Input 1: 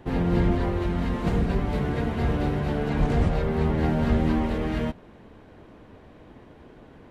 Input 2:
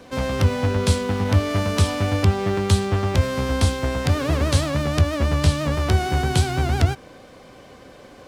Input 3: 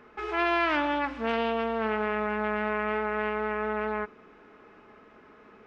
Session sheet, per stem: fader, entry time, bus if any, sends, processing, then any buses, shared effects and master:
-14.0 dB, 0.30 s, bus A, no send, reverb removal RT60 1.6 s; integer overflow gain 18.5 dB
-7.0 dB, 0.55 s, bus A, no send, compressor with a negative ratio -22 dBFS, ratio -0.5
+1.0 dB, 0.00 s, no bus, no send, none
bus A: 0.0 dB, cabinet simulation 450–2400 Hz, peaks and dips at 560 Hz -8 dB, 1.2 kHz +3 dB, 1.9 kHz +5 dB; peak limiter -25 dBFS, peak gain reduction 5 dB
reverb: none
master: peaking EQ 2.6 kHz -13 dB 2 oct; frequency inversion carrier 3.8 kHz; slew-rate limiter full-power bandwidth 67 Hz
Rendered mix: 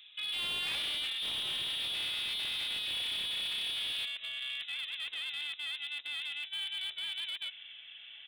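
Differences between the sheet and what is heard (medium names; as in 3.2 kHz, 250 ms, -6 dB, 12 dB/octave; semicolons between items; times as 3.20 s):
stem 1 -14.0 dB -> -20.5 dB; stem 2 -7.0 dB -> 0.0 dB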